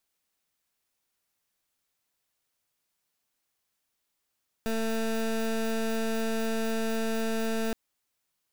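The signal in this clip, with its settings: pulse 224 Hz, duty 21% -28.5 dBFS 3.07 s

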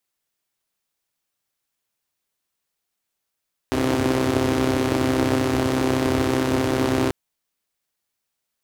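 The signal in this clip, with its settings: four-cylinder engine model, steady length 3.39 s, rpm 3900, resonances 97/290 Hz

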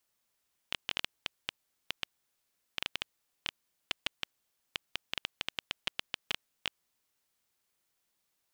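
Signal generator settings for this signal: random clicks 6.9/s -13.5 dBFS 6.00 s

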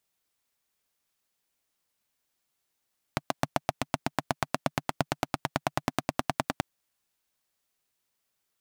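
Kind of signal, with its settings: single-cylinder engine model, changing speed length 3.44 s, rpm 900, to 1200, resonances 150/260/670 Hz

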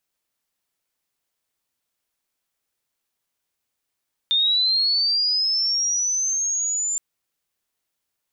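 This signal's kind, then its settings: chirp linear 3600 Hz -> 7200 Hz -16 dBFS -> -21.5 dBFS 2.67 s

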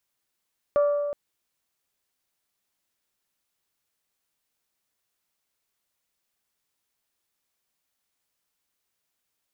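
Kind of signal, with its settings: glass hit bell, length 0.37 s, lowest mode 581 Hz, decay 1.98 s, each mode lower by 12 dB, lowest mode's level -16.5 dB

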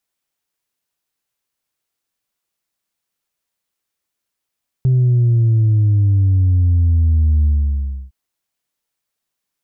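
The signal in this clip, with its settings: sub drop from 130 Hz, over 3.26 s, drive 1 dB, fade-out 0.66 s, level -10.5 dB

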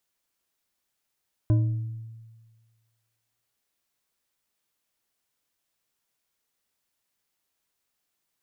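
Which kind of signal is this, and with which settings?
glass hit bar, length 2.07 s, lowest mode 113 Hz, decay 1.53 s, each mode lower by 9.5 dB, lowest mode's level -16 dB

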